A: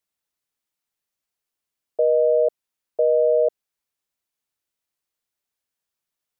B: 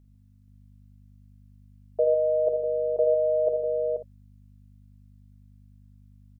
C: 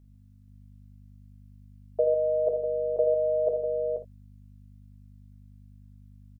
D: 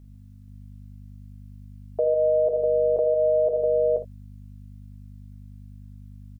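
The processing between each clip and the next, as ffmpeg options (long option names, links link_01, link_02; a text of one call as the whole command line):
ffmpeg -i in.wav -filter_complex "[0:a]bandreject=frequency=550:width=12,aeval=exprs='val(0)+0.00224*(sin(2*PI*50*n/s)+sin(2*PI*2*50*n/s)/2+sin(2*PI*3*50*n/s)/3+sin(2*PI*4*50*n/s)/4+sin(2*PI*5*50*n/s)/5)':channel_layout=same,asplit=2[link_01][link_02];[link_02]aecho=0:1:49|79|124|151|479|539:0.376|0.335|0.133|0.376|0.447|0.126[link_03];[link_01][link_03]amix=inputs=2:normalize=0,volume=-2.5dB" out.wav
ffmpeg -i in.wav -filter_complex "[0:a]asplit=2[link_01][link_02];[link_02]adelay=20,volume=-11dB[link_03];[link_01][link_03]amix=inputs=2:normalize=0" out.wav
ffmpeg -i in.wav -af "alimiter=limit=-22.5dB:level=0:latency=1:release=179,volume=8dB" out.wav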